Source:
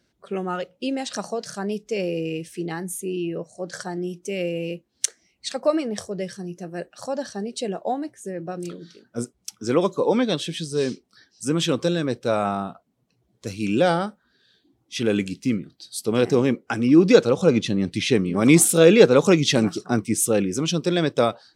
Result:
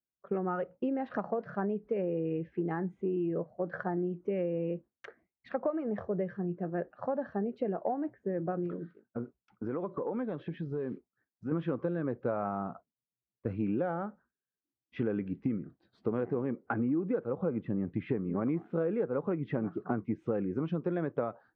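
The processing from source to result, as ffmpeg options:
ffmpeg -i in.wav -filter_complex "[0:a]asplit=3[link_01][link_02][link_03];[link_01]afade=type=out:start_time=8.66:duration=0.02[link_04];[link_02]acompressor=threshold=-31dB:ratio=6:attack=3.2:release=140:knee=1:detection=peak,afade=type=in:start_time=8.66:duration=0.02,afade=type=out:start_time=11.51:duration=0.02[link_05];[link_03]afade=type=in:start_time=11.51:duration=0.02[link_06];[link_04][link_05][link_06]amix=inputs=3:normalize=0,asettb=1/sr,asplit=3[link_07][link_08][link_09];[link_07]atrim=end=16.654[link_10];[link_08]atrim=start=16.65:end=19.82,asetpts=PTS-STARTPTS,afade=type=in:duration=0.004:curve=qsin,afade=type=out:start_time=3.166:duration=0.004:curve=qsin,lowpass=frequency=2700:poles=1[link_11];[link_09]atrim=start=19.816[link_12];[link_10][link_11]acrossfade=duration=0.004:curve1=hsin:curve2=qsin[link_13];[link_13][link_12]acrossfade=duration=0.004:curve1=qsin:curve2=hsin,agate=range=-33dB:threshold=-39dB:ratio=3:detection=peak,lowpass=frequency=1600:width=0.5412,lowpass=frequency=1600:width=1.3066,acompressor=threshold=-28dB:ratio=12" out.wav

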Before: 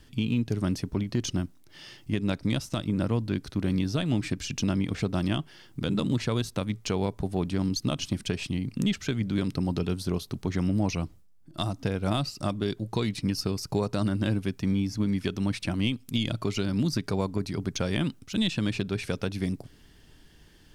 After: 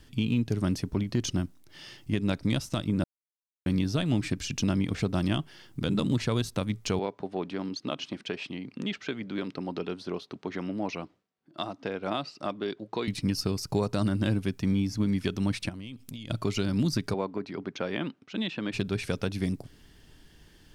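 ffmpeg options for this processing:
ffmpeg -i in.wav -filter_complex "[0:a]asettb=1/sr,asplit=3[link_01][link_02][link_03];[link_01]atrim=end=6.994[link_04];[link_02]atrim=start=6.99:end=13.08,asetpts=PTS-STARTPTS,afade=type=in:duration=0.004:curve=qsin,afade=type=out:start_time=6.086:duration=0.004:curve=qsin,highpass=310,lowpass=3400[link_05];[link_03]atrim=start=13.076[link_06];[link_04][link_05]acrossfade=duration=0.004:curve1=hsin:curve2=qsin[link_07];[link_07][link_06]acrossfade=duration=0.004:curve1=qsin:curve2=hsin,asplit=3[link_08][link_09][link_10];[link_08]afade=type=out:start_time=15.68:duration=0.02[link_11];[link_09]acompressor=threshold=-36dB:ratio=16:attack=3.2:release=140:knee=1:detection=peak,afade=type=in:start_time=15.68:duration=0.02,afade=type=out:start_time=16.29:duration=0.02[link_12];[link_10]afade=type=in:start_time=16.29:duration=0.02[link_13];[link_11][link_12][link_13]amix=inputs=3:normalize=0,asplit=3[link_14][link_15][link_16];[link_14]afade=type=out:start_time=17.13:duration=0.02[link_17];[link_15]highpass=270,lowpass=2700,afade=type=in:start_time=17.13:duration=0.02,afade=type=out:start_time=18.72:duration=0.02[link_18];[link_16]afade=type=in:start_time=18.72:duration=0.02[link_19];[link_17][link_18][link_19]amix=inputs=3:normalize=0,asplit=3[link_20][link_21][link_22];[link_20]atrim=end=3.04,asetpts=PTS-STARTPTS,afade=type=out:start_time=3.036:duration=0.004:curve=hsin[link_23];[link_21]atrim=start=3.04:end=3.66,asetpts=PTS-STARTPTS,volume=0[link_24];[link_22]atrim=start=3.66,asetpts=PTS-STARTPTS,afade=type=in:duration=0.004:curve=hsin[link_25];[link_23][link_24][link_25]concat=n=3:v=0:a=1" out.wav

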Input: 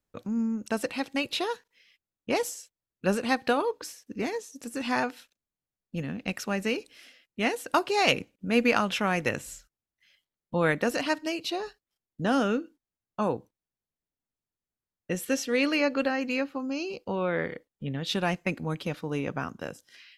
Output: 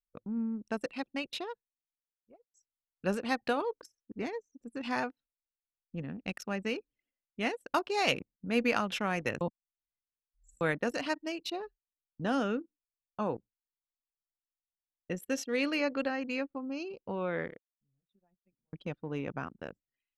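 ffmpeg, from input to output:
ffmpeg -i in.wav -filter_complex "[0:a]asplit=6[link_01][link_02][link_03][link_04][link_05][link_06];[link_01]atrim=end=2.54,asetpts=PTS-STARTPTS,afade=type=out:start_time=0.92:duration=1.62[link_07];[link_02]atrim=start=2.54:end=9.412,asetpts=PTS-STARTPTS,afade=type=in:duration=0.004:curve=hsin[link_08];[link_03]atrim=start=9.408:end=10.612,asetpts=PTS-STARTPTS,areverse[link_09];[link_04]atrim=start=10.608:end=17.58,asetpts=PTS-STARTPTS,afade=type=out:start_time=6.722:duration=0.25:curve=log:silence=0.0707946[link_10];[link_05]atrim=start=17.58:end=18.73,asetpts=PTS-STARTPTS,volume=-23dB[link_11];[link_06]atrim=start=18.73,asetpts=PTS-STARTPTS,afade=type=in:duration=0.25:curve=log:silence=0.0707946[link_12];[link_07][link_08]concat=n=2:v=0:a=1[link_13];[link_13][link_09]acrossfade=duration=0.004:curve1=hsin:curve2=hsin[link_14];[link_10][link_11][link_12]concat=n=3:v=0:a=1[link_15];[link_14][link_15]acrossfade=duration=0.004:curve1=hsin:curve2=hsin,anlmdn=3.98,volume=-5.5dB" out.wav

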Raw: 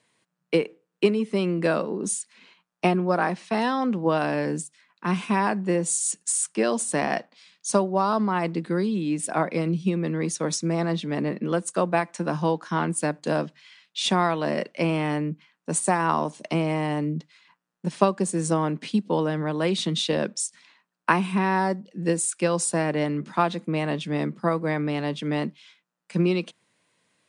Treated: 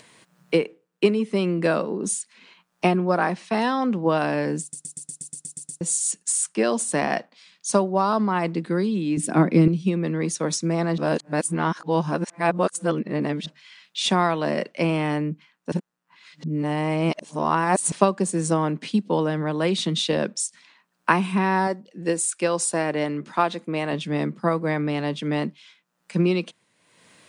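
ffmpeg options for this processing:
ffmpeg -i in.wav -filter_complex "[0:a]asettb=1/sr,asplit=3[link_01][link_02][link_03];[link_01]atrim=end=9.174[link_04];[link_02]atrim=start=9.17:end=9.68,asetpts=PTS-STARTPTS,afade=type=in:duration=0.004:curve=qsin,afade=type=out:start_time=0.506:duration=0.004:curve=qsin,lowshelf=frequency=420:width_type=q:width=1.5:gain=9[link_05];[link_03]atrim=start=9.676[link_06];[link_04][link_05]acrossfade=duration=0.004:curve1=hsin:curve2=qsin[link_07];[link_07][link_06]acrossfade=duration=0.004:curve1=qsin:curve2=hsin,asettb=1/sr,asplit=3[link_08][link_09][link_10];[link_08]atrim=end=21.674[link_11];[link_09]atrim=start=21.67:end=23.93,asetpts=PTS-STARTPTS,afade=type=in:duration=0.004:curve=qsin,afade=type=out:start_time=2.256:duration=0.004:curve=qsin,equalizer=frequency=180:width=1.5:gain=-7[link_12];[link_10]atrim=start=23.926[link_13];[link_11][link_12]acrossfade=duration=0.004:curve1=hsin:curve2=qsin[link_14];[link_14][link_13]acrossfade=duration=0.004:curve1=qsin:curve2=hsin,asplit=15[link_15][link_16][link_17][link_18][link_19][link_20][link_21][link_22][link_23][link_24][link_25][link_26][link_27][link_28][link_29];[link_15]atrim=end=4.732[link_30];[link_16]atrim=start=4.608:end=4.732[link_31];[link_17]atrim=start=4.608:end=4.732[link_32];[link_18]atrim=start=4.608:end=4.732[link_33];[link_19]atrim=start=4.608:end=4.732[link_34];[link_20]atrim=start=4.608:end=4.732[link_35];[link_21]atrim=start=4.608:end=4.732[link_36];[link_22]atrim=start=4.608:end=4.732[link_37];[link_23]atrim=start=4.608:end=4.732[link_38];[link_24]atrim=start=4.608:end=4.732[link_39];[link_25]atrim=start=5.808:end=10.982[link_40];[link_26]atrim=start=10.978:end=13.462,asetpts=PTS-STARTPTS,areverse[link_41];[link_27]atrim=start=13.458:end=15.722[link_42];[link_28]atrim=start=15.718:end=17.922,asetpts=PTS-STARTPTS,areverse[link_43];[link_29]atrim=start=17.918[link_44];[link_30][link_31]acrossfade=duration=0.004:curve1=hsin:curve2=hsin[link_45];[link_45][link_32]acrossfade=duration=0.004:curve1=hsin:curve2=hsin[link_46];[link_46][link_33]acrossfade=duration=0.004:curve1=hsin:curve2=hsin[link_47];[link_47][link_34]acrossfade=duration=0.004:curve1=hsin:curve2=hsin[link_48];[link_48][link_35]acrossfade=duration=0.004:curve1=hsin:curve2=hsin[link_49];[link_49][link_36]acrossfade=duration=0.004:curve1=hsin:curve2=hsin[link_50];[link_50][link_37]acrossfade=duration=0.004:curve1=hsin:curve2=hsin[link_51];[link_51][link_38]acrossfade=duration=0.004:curve1=hsin:curve2=hsin[link_52];[link_52][link_39]acrossfade=duration=0.004:curve1=hsin:curve2=hsin[link_53];[link_53][link_40]acrossfade=duration=0.004:curve1=hsin:curve2=hsin[link_54];[link_54][link_41]acrossfade=duration=0.004:curve1=hsin:curve2=hsin[link_55];[link_55][link_42]acrossfade=duration=0.004:curve1=hsin:curve2=hsin[link_56];[link_56][link_43]acrossfade=duration=0.004:curve1=hsin:curve2=hsin[link_57];[link_57][link_44]acrossfade=duration=0.004:curve1=hsin:curve2=hsin,acompressor=mode=upward:threshold=-42dB:ratio=2.5,volume=1.5dB" out.wav

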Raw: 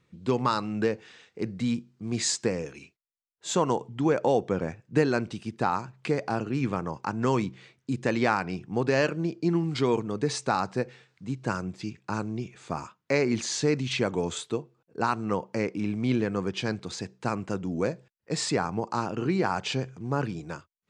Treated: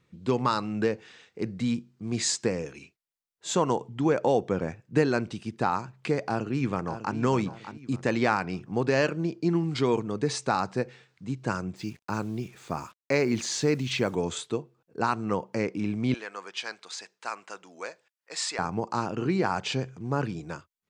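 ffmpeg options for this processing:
ffmpeg -i in.wav -filter_complex "[0:a]asplit=2[link_01][link_02];[link_02]afade=type=in:start_time=6.18:duration=0.01,afade=type=out:start_time=7.17:duration=0.01,aecho=0:1:600|1200|1800|2400:0.281838|0.0986434|0.0345252|0.0120838[link_03];[link_01][link_03]amix=inputs=2:normalize=0,asettb=1/sr,asplit=3[link_04][link_05][link_06];[link_04]atrim=end=11.764[link_07];[link_05]atrim=start=11.76:end=14.15,asetpts=PTS-STARTPTS,afade=type=in:duration=0.004:curve=qsin,afade=type=out:start_time=2.386:duration=0.004:curve=qsin,acrusher=bits=8:mix=0:aa=0.5[link_08];[link_06]atrim=start=14.146[link_09];[link_07][link_08]acrossfade=duration=0.004:curve1=hsin:curve2=qsin[link_10];[link_10][link_09]acrossfade=duration=0.004:curve1=qsin:curve2=hsin,asettb=1/sr,asplit=3[link_11][link_12][link_13];[link_11]atrim=end=16.144[link_14];[link_12]atrim=start=16.14:end=18.59,asetpts=PTS-STARTPTS,afade=type=in:duration=0.004:curve=qsin,afade=type=out:start_time=2.446:duration=0.004:curve=qsin,highpass=930[link_15];[link_13]atrim=start=18.586[link_16];[link_14][link_15]acrossfade=duration=0.004:curve1=hsin:curve2=qsin[link_17];[link_17][link_16]acrossfade=duration=0.004:curve1=qsin:curve2=hsin" out.wav

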